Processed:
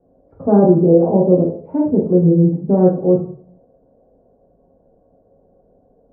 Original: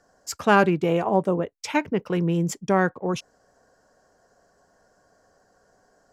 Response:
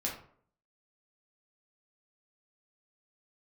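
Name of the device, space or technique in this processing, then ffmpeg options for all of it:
next room: -filter_complex "[0:a]lowpass=f=600:w=0.5412,lowpass=f=600:w=1.3066[s0];[1:a]atrim=start_sample=2205[s1];[s0][s1]afir=irnorm=-1:irlink=0,volume=2.11"

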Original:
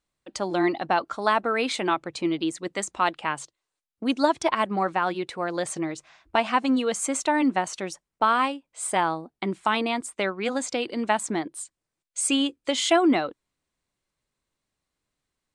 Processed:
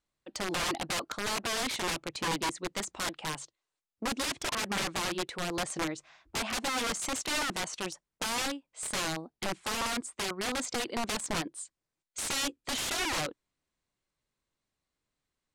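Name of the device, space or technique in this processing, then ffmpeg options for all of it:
overflowing digital effects unit: -af "aeval=exprs='(mod(13.3*val(0)+1,2)-1)/13.3':c=same,lowpass=9500,volume=0.668"

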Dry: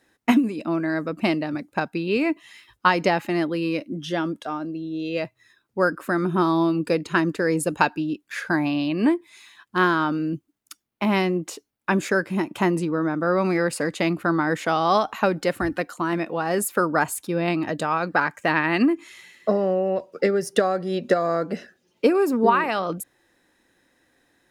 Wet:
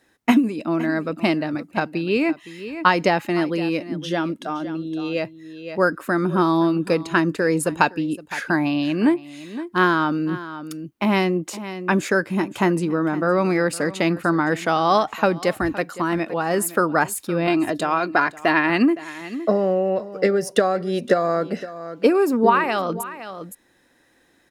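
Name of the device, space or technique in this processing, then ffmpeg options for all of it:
ducked delay: -filter_complex "[0:a]asettb=1/sr,asplit=3[s0][s1][s2];[s0]atrim=end=17.474[s3];[s1]atrim=start=17.47:end=18.7,asetpts=PTS-STARTPTS,afade=t=in:d=0.004:c=qsin,afade=t=out:st=1.226:d=0.004:c=qsin,aecho=1:1:2.9:0.53,atrim=end_sample=54243[s4];[s2]atrim=start=18.696[s5];[s3][s4]acrossfade=d=0.004:c1=hsin:c2=qsin[s6];[s6][s5]acrossfade=d=0.004:c1=qsin:c2=hsin,asplit=3[s7][s8][s9];[s8]adelay=514,volume=0.794[s10];[s9]apad=whole_len=1103413[s11];[s10][s11]sidechaincompress=threshold=0.0141:ratio=4:attack=9.7:release=814[s12];[s7][s12]amix=inputs=2:normalize=0,volume=1.26"

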